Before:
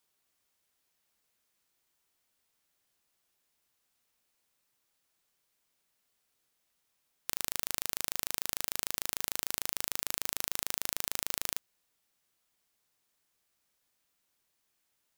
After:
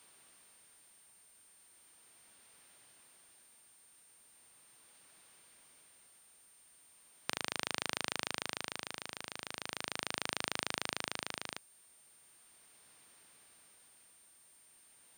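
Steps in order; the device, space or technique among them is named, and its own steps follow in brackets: medium wave at night (band-pass 100–4000 Hz; compression 6:1, threshold -48 dBFS, peak gain reduction 13 dB; tremolo 0.38 Hz, depth 62%; whistle 9 kHz -79 dBFS; white noise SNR 23 dB); trim +17 dB

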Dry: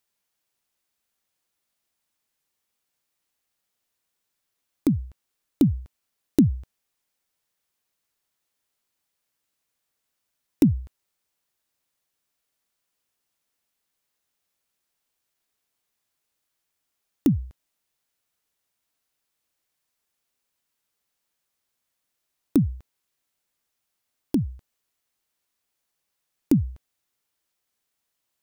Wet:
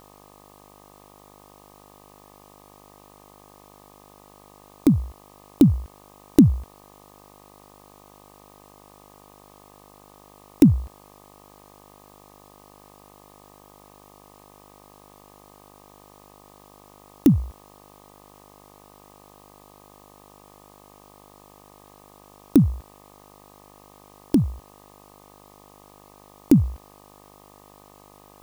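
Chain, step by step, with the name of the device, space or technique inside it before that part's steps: video cassette with head-switching buzz (mains buzz 50 Hz, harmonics 25, -56 dBFS 0 dB/octave; white noise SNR 30 dB); trim +4.5 dB

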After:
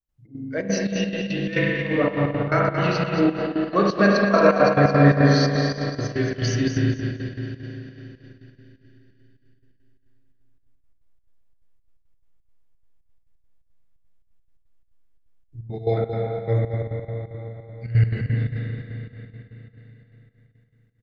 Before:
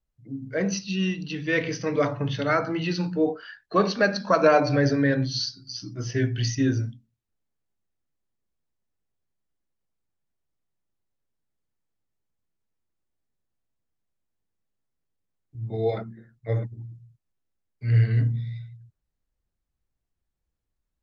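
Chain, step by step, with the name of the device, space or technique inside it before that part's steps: 1.65–2.52 s: inverse Chebyshev low-pass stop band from 3.4 kHz, stop band 50 dB; spring tank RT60 4 s, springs 35/41 ms, chirp 35 ms, DRR -3.5 dB; trance gate with a delay (trance gate ".xx.xxx.xx.x.x" 173 bpm -12 dB; feedback delay 225 ms, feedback 26%, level -7.5 dB)

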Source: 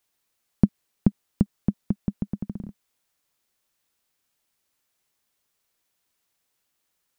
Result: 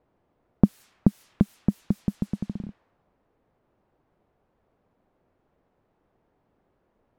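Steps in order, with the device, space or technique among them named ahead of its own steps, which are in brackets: cassette deck with a dynamic noise filter (white noise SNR 25 dB; level-controlled noise filter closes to 590 Hz, open at -23.5 dBFS); trim +1 dB

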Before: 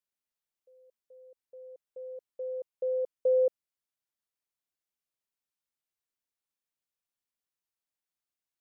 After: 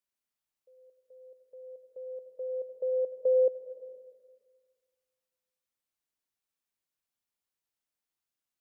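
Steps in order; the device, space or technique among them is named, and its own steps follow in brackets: compressed reverb return (on a send at -6 dB: reverberation RT60 1.5 s, pre-delay 71 ms + compression 6:1, threshold -33 dBFS, peak gain reduction 9.5 dB)

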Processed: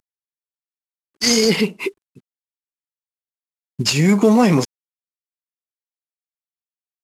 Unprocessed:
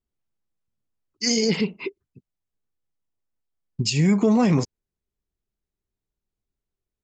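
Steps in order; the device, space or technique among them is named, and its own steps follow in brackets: early wireless headset (high-pass 240 Hz 6 dB/octave; CVSD coder 64 kbps); trim +8 dB

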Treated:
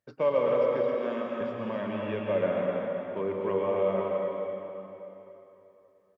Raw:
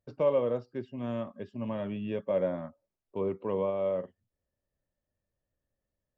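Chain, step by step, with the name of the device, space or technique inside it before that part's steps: stadium PA (high-pass 200 Hz 6 dB/octave; peaking EQ 1.7 kHz +7.5 dB 1.1 oct; loudspeakers at several distances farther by 58 m -11 dB, 92 m -7 dB; reverberation RT60 3.2 s, pre-delay 106 ms, DRR 0 dB); 0.94–1.41 s: high-pass 180 Hz 24 dB/octave

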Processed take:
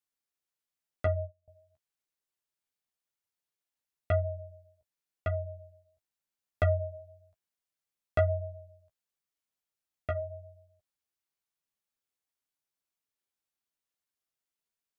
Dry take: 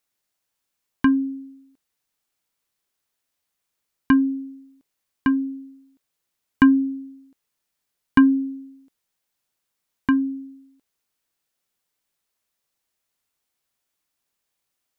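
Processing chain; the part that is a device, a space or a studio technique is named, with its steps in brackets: 1.06–1.48 s: gate -25 dBFS, range -31 dB; alien voice (ring modulator 360 Hz; flange 0.93 Hz, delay 9.4 ms, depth 6.6 ms, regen -15%); trim -6 dB

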